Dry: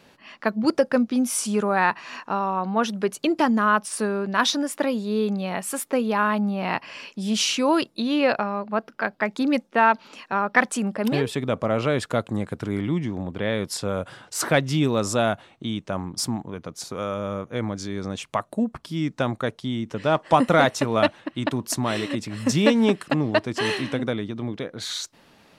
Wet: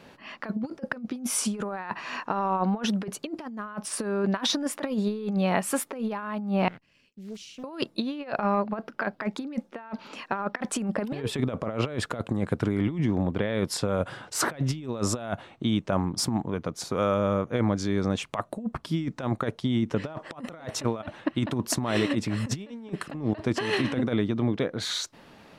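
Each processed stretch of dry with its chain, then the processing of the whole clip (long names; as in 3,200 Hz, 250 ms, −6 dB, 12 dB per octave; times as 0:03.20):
0:06.68–0:07.64: mu-law and A-law mismatch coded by A + guitar amp tone stack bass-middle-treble 10-0-1 + highs frequency-modulated by the lows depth 0.87 ms
whole clip: high-shelf EQ 3,200 Hz −7 dB; compressor whose output falls as the input rises −27 dBFS, ratio −0.5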